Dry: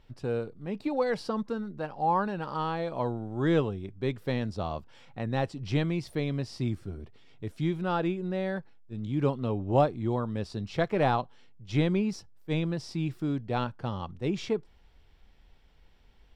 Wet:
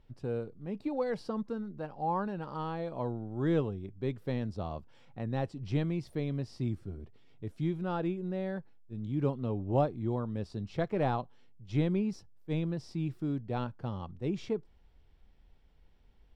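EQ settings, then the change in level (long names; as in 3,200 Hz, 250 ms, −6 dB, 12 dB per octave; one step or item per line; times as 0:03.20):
tilt shelving filter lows +3.5 dB, about 770 Hz
−6.0 dB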